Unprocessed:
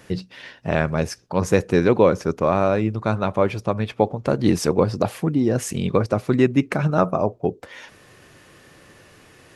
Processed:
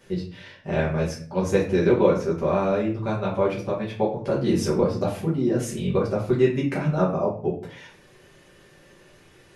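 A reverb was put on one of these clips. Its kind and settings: shoebox room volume 39 m³, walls mixed, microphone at 1.2 m; gain -11.5 dB

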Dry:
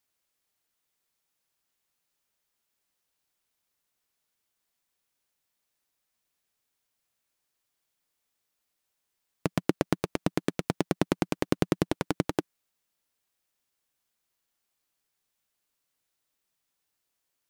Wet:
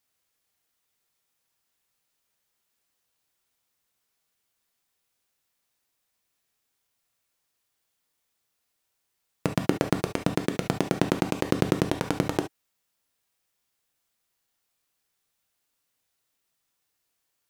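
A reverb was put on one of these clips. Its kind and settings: non-linear reverb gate 90 ms flat, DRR 5 dB; gain +2 dB

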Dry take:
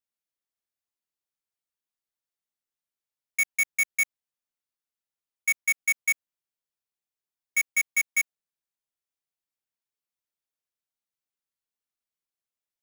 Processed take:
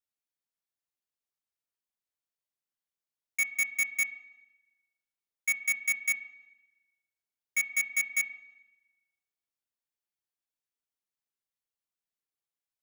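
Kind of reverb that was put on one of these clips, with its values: spring tank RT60 1.1 s, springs 31/35/49 ms, chirp 50 ms, DRR 11 dB; gain -4 dB

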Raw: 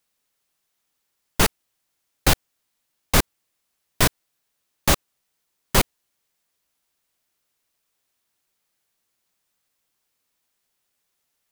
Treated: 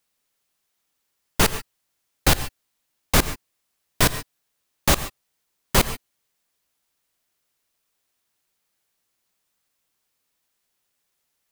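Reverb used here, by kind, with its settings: non-linear reverb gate 0.16 s rising, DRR 12 dB

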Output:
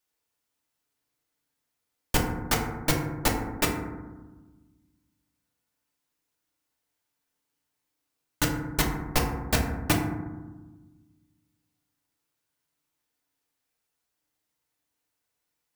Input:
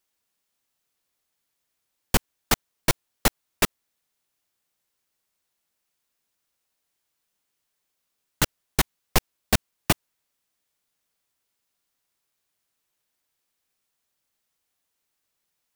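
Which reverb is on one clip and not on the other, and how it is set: FDN reverb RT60 1.2 s, low-frequency decay 1.6×, high-frequency decay 0.3×, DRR -1 dB; gain -5 dB

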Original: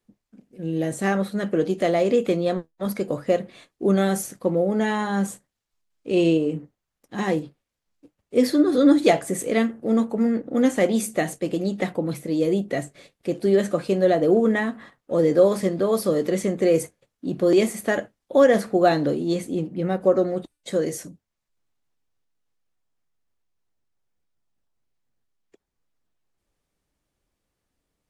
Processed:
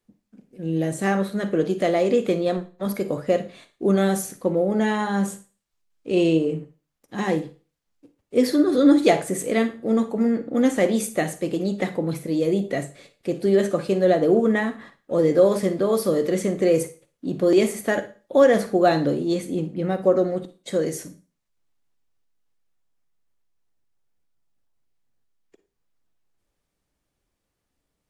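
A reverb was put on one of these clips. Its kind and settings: Schroeder reverb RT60 0.35 s, DRR 11.5 dB

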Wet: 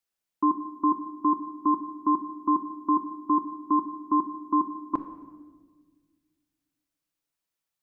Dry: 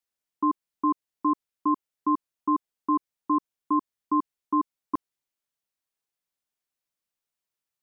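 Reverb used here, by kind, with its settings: shoebox room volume 1400 m³, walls mixed, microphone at 0.71 m; gain +1 dB

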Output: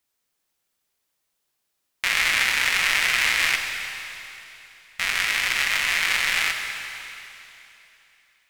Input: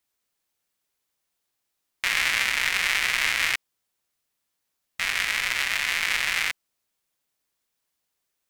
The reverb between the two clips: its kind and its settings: digital reverb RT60 3.1 s, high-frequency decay 1×, pre-delay 5 ms, DRR 4 dB; gain +1.5 dB

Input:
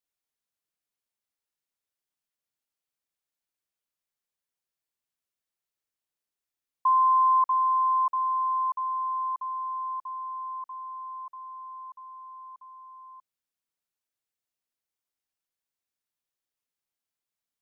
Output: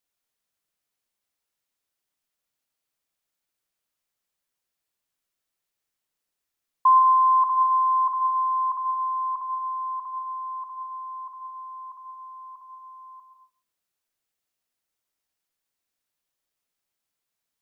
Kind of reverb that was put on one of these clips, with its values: digital reverb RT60 0.53 s, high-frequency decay 0.65×, pre-delay 90 ms, DRR 8 dB; gain +5.5 dB

